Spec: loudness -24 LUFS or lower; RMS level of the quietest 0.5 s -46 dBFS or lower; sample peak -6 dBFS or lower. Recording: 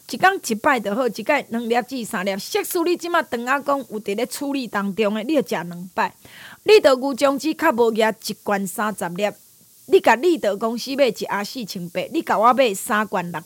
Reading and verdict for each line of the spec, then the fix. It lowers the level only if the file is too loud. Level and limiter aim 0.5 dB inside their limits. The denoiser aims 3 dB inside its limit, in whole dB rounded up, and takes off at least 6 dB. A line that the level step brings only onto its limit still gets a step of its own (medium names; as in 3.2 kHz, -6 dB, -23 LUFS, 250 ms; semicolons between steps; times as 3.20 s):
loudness -20.5 LUFS: fail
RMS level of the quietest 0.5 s -51 dBFS: pass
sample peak -3.5 dBFS: fail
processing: trim -4 dB